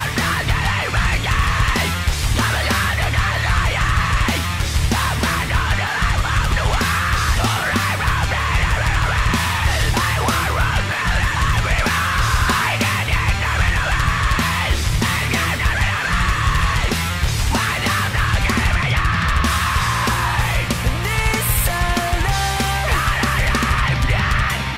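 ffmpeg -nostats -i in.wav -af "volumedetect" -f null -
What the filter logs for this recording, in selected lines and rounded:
mean_volume: -17.7 dB
max_volume: -8.0 dB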